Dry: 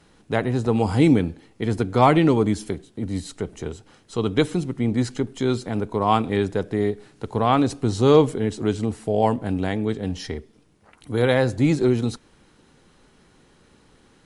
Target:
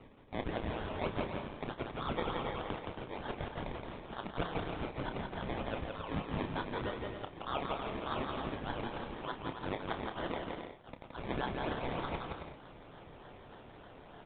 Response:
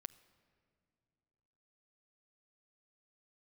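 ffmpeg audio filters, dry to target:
-filter_complex "[0:a]highpass=f=1.4k:w=0.5412,highpass=f=1.4k:w=1.3066,areverse,acompressor=threshold=-45dB:ratio=5,areverse,asuperpass=centerf=2400:order=8:qfactor=0.53,acrusher=samples=25:mix=1:aa=0.000001:lfo=1:lforange=15:lforate=3.3,asplit=2[a][b];[b]adelay=30,volume=-10dB[c];[a][c]amix=inputs=2:normalize=0,asplit=2[d][e];[e]aecho=0:1:170|272|333.2|369.9|392:0.631|0.398|0.251|0.158|0.1[f];[d][f]amix=inputs=2:normalize=0,aresample=8000,aresample=44100,volume=9.5dB"

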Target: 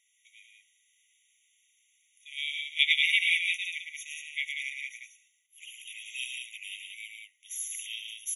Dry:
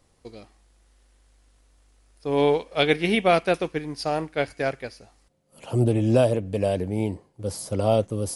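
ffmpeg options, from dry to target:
-af "aecho=1:1:110.8|183.7:0.562|0.562,afftfilt=real='re*eq(mod(floor(b*sr/1024/1900),2),1)':imag='im*eq(mod(floor(b*sr/1024/1900),2),1)':win_size=1024:overlap=0.75,volume=2dB"

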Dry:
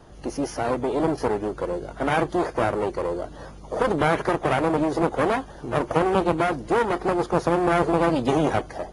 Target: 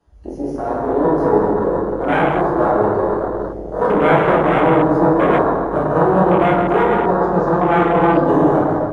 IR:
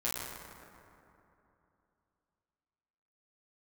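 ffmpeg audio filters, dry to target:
-filter_complex "[0:a]asettb=1/sr,asplit=3[a][b][c];[a]atrim=end=7.004[d];[b]atrim=start=7:end=8.25,asetpts=PTS-STARTPTS,afade=t=in:d=0.004:c=qsin,afade=t=out:st=1.246:d=0.004:c=qsin,lowpass=f=8.6k:w=0.5412,lowpass=f=8.6k:w=1.3066[e];[c]atrim=start=8.246[f];[d][e]acrossfade=d=0.004:c1=hsin:c2=qsin[g];[g][f]acrossfade=d=0.004:c1=qsin:c2=hsin[h];[1:a]atrim=start_sample=2205[i];[h][i]afir=irnorm=-1:irlink=0,acrossover=split=100[j][k];[j]aeval=exprs='0.02*(abs(mod(val(0)/0.02+3,4)-2)-1)':c=same[l];[l][k]amix=inputs=2:normalize=0,afwtdn=0.0708,dynaudnorm=f=730:g=3:m=11.5dB,volume=-1dB"

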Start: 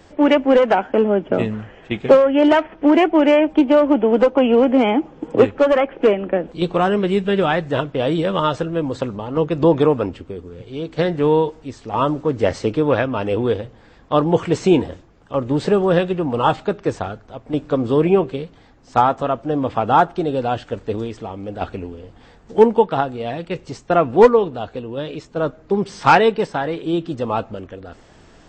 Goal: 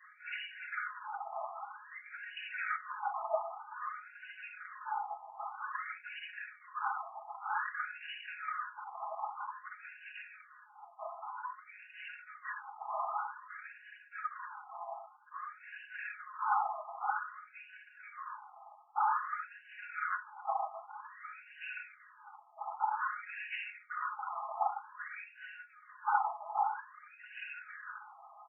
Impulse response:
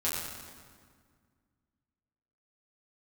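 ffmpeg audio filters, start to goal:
-filter_complex "[0:a]acrossover=split=210[a][b];[b]acontrast=25[c];[a][c]amix=inputs=2:normalize=0,aeval=exprs='1.12*(cos(1*acos(clip(val(0)/1.12,-1,1)))-cos(1*PI/2))+0.141*(cos(2*acos(clip(val(0)/1.12,-1,1)))-cos(2*PI/2))+0.0251*(cos(6*acos(clip(val(0)/1.12,-1,1)))-cos(6*PI/2))':c=same[d];[1:a]atrim=start_sample=2205,afade=t=out:st=0.41:d=0.01,atrim=end_sample=18522,asetrate=88200,aresample=44100[e];[d][e]afir=irnorm=-1:irlink=0,asoftclip=type=tanh:threshold=-0.5dB,afftfilt=real='hypot(re,im)*cos(2*PI*random(0))':imag='hypot(re,im)*sin(2*PI*random(1))':win_size=512:overlap=0.75,areverse,acompressor=threshold=-26dB:ratio=16,areverse,asplit=2[f][g];[g]adelay=100,highpass=300,lowpass=3.4k,asoftclip=type=hard:threshold=-26.5dB,volume=-24dB[h];[f][h]amix=inputs=2:normalize=0,flanger=delay=4.4:depth=9:regen=88:speed=0.14:shape=triangular,aecho=1:1:4.8:0.67,afftfilt=real='re*between(b*sr/1024,910*pow(2100/910,0.5+0.5*sin(2*PI*0.52*pts/sr))/1.41,910*pow(2100/910,0.5+0.5*sin(2*PI*0.52*pts/sr))*1.41)':imag='im*between(b*sr/1024,910*pow(2100/910,0.5+0.5*sin(2*PI*0.52*pts/sr))/1.41,910*pow(2100/910,0.5+0.5*sin(2*PI*0.52*pts/sr))*1.41)':win_size=1024:overlap=0.75,volume=5.5dB"

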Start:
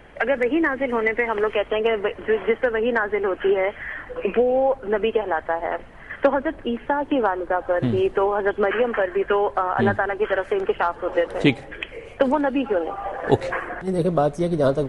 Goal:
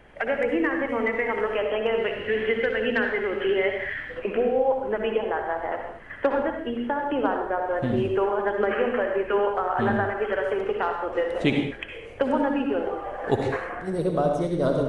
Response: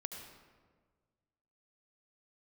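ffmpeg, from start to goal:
-filter_complex "[0:a]asettb=1/sr,asplit=3[a][b][c];[a]atrim=end=1.984[d];[b]atrim=start=1.98:end=4.19,asetpts=PTS-STARTPTS,afade=t=in:d=0.004:c=qsin,afade=t=out:st=2.206:d=0.004:c=qsin,equalizer=f=125:t=o:w=1:g=5,equalizer=f=1k:t=o:w=1:g=-7,equalizer=f=2k:t=o:w=1:g=5,equalizer=f=4k:t=o:w=1:g=10[e];[c]atrim=start=4.186[f];[d][e]acrossfade=d=0.004:c1=hsin:c2=qsin[g];[g][f]acrossfade=d=0.004:c1=qsin:c2=hsin[h];[1:a]atrim=start_sample=2205,afade=t=out:st=0.32:d=0.01,atrim=end_sample=14553,asetrate=52920,aresample=44100[i];[h][i]afir=irnorm=-1:irlink=0"

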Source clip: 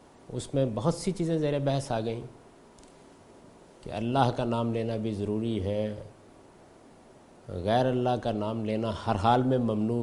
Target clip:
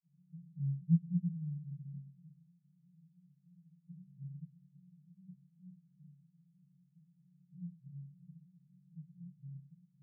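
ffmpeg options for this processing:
-af "flanger=delay=15:depth=3.6:speed=1.5,asuperpass=centerf=160:order=20:qfactor=3.3,volume=3dB"

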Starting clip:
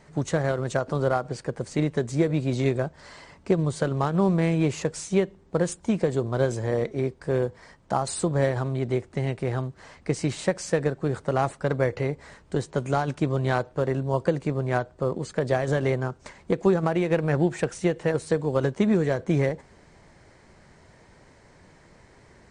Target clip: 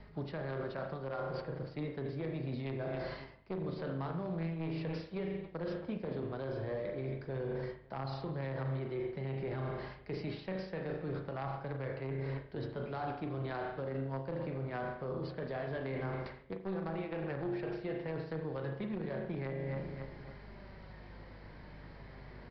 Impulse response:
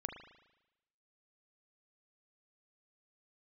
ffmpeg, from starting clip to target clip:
-filter_complex "[0:a]flanger=delay=4.8:depth=7.3:regen=60:speed=0.1:shape=sinusoidal[a];[1:a]atrim=start_sample=2205,afade=t=out:st=0.4:d=0.01,atrim=end_sample=18081[b];[a][b]afir=irnorm=-1:irlink=0,aeval=exprs='val(0)+0.00141*(sin(2*PI*50*n/s)+sin(2*PI*2*50*n/s)/2+sin(2*PI*3*50*n/s)/3+sin(2*PI*4*50*n/s)/4+sin(2*PI*5*50*n/s)/5)':c=same,aeval=exprs='0.224*(cos(1*acos(clip(val(0)/0.224,-1,1)))-cos(1*PI/2))+0.1*(cos(2*acos(clip(val(0)/0.224,-1,1)))-cos(2*PI/2))+0.0398*(cos(3*acos(clip(val(0)/0.224,-1,1)))-cos(3*PI/2))+0.0282*(cos(4*acos(clip(val(0)/0.224,-1,1)))-cos(4*PI/2))':c=same,acrossover=split=270|740[c][d][e];[e]acrusher=bits=4:mode=log:mix=0:aa=0.000001[f];[c][d][f]amix=inputs=3:normalize=0,asplit=2[g][h];[h]adelay=273,lowpass=f=4.1k:p=1,volume=-19dB,asplit=2[i][j];[j]adelay=273,lowpass=f=4.1k:p=1,volume=0.41,asplit=2[k][l];[l]adelay=273,lowpass=f=4.1k:p=1,volume=0.41[m];[g][i][k][m]amix=inputs=4:normalize=0,areverse,acompressor=threshold=-46dB:ratio=5,areverse,aresample=11025,aresample=44100,alimiter=level_in=18dB:limit=-24dB:level=0:latency=1:release=25,volume=-18dB,volume=12dB"

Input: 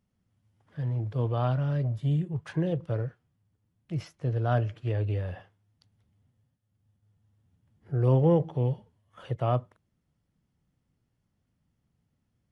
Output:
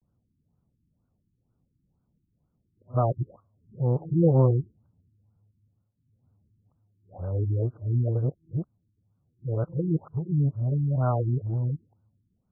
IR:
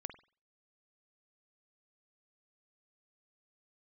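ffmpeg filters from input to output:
-af "areverse,afftfilt=real='re*lt(b*sr/1024,370*pow(1600/370,0.5+0.5*sin(2*PI*2.1*pts/sr)))':imag='im*lt(b*sr/1024,370*pow(1600/370,0.5+0.5*sin(2*PI*2.1*pts/sr)))':win_size=1024:overlap=0.75,volume=2.5dB"

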